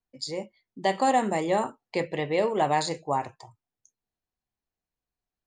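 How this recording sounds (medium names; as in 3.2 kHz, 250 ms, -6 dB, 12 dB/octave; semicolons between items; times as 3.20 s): noise floor -91 dBFS; spectral tilt -4.5 dB/octave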